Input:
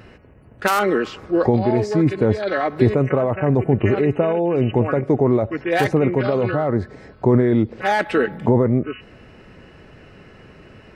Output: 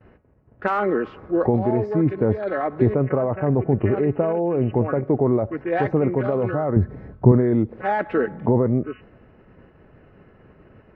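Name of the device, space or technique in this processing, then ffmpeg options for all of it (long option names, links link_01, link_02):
hearing-loss simulation: -filter_complex "[0:a]lowpass=1500,agate=range=-33dB:threshold=-41dB:ratio=3:detection=peak,asettb=1/sr,asplit=3[link_01][link_02][link_03];[link_01]atrim=end=6.764[link_04];[link_02]atrim=start=6.76:end=7.32,asetpts=PTS-STARTPTS,afade=type=in:duration=0.004:curve=qsin,afade=type=out:start_time=0.556:duration=0.004:curve=qsin,bass=frequency=250:gain=11,treble=frequency=4000:gain=0[link_05];[link_03]atrim=start=7.316[link_06];[link_04][link_05]acrossfade=duration=0.004:curve1=hsin:curve2=qsin[link_07];[link_07][link_06]acrossfade=duration=0.004:curve1=qsin:curve2=hsin,volume=-2.5dB"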